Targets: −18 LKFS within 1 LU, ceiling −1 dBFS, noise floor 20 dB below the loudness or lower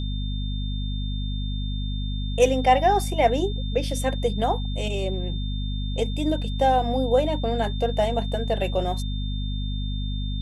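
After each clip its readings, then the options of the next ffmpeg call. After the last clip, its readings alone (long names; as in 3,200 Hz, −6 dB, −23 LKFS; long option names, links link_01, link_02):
mains hum 50 Hz; hum harmonics up to 250 Hz; level of the hum −25 dBFS; interfering tone 3,600 Hz; level of the tone −38 dBFS; integrated loudness −25.0 LKFS; sample peak −6.0 dBFS; target loudness −18.0 LKFS
→ -af "bandreject=frequency=50:width_type=h:width=6,bandreject=frequency=100:width_type=h:width=6,bandreject=frequency=150:width_type=h:width=6,bandreject=frequency=200:width_type=h:width=6,bandreject=frequency=250:width_type=h:width=6"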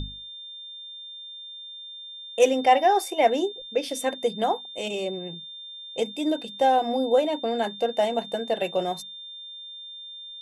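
mains hum none found; interfering tone 3,600 Hz; level of the tone −38 dBFS
→ -af "bandreject=frequency=3600:width=30"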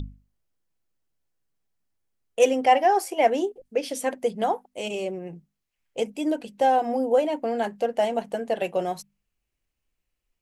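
interfering tone none found; integrated loudness −25.0 LKFS; sample peak −7.0 dBFS; target loudness −18.0 LKFS
→ -af "volume=7dB,alimiter=limit=-1dB:level=0:latency=1"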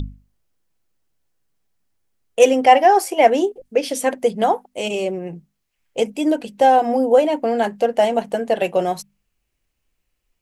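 integrated loudness −18.0 LKFS; sample peak −1.0 dBFS; background noise floor −74 dBFS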